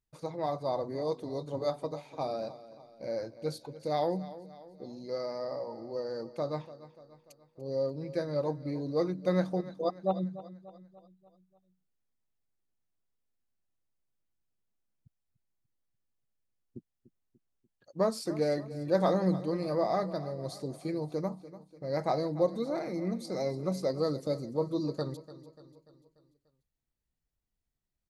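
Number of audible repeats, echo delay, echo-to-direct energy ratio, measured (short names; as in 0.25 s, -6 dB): 4, 0.293 s, -14.5 dB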